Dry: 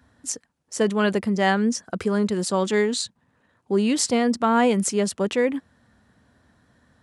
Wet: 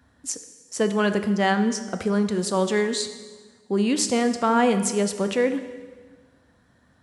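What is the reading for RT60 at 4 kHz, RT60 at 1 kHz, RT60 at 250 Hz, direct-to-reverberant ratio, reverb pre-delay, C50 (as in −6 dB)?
1.3 s, 1.4 s, 1.6 s, 8.5 dB, 9 ms, 10.5 dB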